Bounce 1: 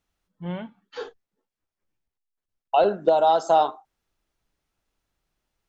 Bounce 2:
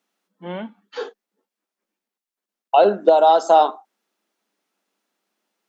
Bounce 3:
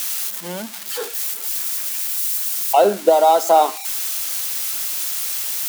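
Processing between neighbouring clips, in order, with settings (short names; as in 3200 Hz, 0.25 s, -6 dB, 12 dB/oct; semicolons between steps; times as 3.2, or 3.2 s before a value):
elliptic high-pass 200 Hz, stop band 40 dB; gain +5.5 dB
switching spikes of -17 dBFS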